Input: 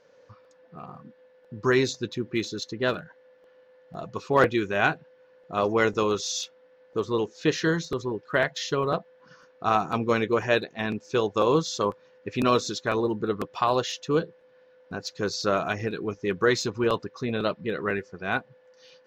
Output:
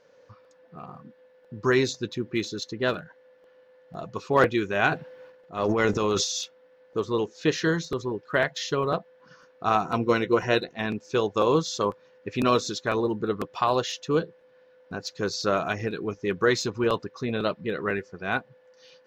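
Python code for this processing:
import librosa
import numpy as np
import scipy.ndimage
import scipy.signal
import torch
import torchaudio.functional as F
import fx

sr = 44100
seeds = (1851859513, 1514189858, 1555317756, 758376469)

y = fx.transient(x, sr, attack_db=-7, sustain_db=10, at=(4.91, 6.25), fade=0.02)
y = fx.ripple_eq(y, sr, per_octave=2.0, db=8, at=(9.85, 10.72))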